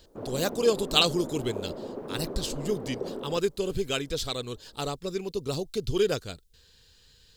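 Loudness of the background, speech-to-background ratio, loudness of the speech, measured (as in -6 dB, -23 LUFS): -38.0 LUFS, 8.5 dB, -29.5 LUFS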